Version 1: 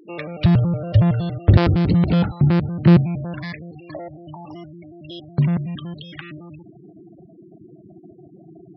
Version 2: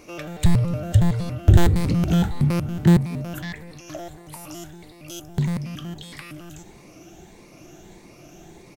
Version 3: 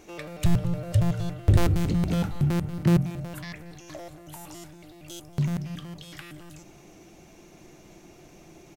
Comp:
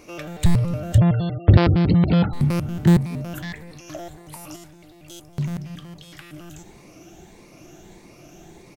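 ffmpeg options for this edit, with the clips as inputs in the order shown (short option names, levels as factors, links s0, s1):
-filter_complex "[1:a]asplit=3[s0][s1][s2];[s0]atrim=end=0.982[s3];[0:a]atrim=start=0.978:end=2.332[s4];[s1]atrim=start=2.328:end=4.562[s5];[2:a]atrim=start=4.558:end=6.332[s6];[s2]atrim=start=6.328[s7];[s3][s4]acrossfade=d=0.004:c1=hsin:c2=hsin[s8];[s8][s5]acrossfade=d=0.004:c1=hsin:c2=hsin[s9];[s9][s6]acrossfade=d=0.004:c1=hsin:c2=hsin[s10];[s10][s7]acrossfade=d=0.004:c1=hsin:c2=hsin"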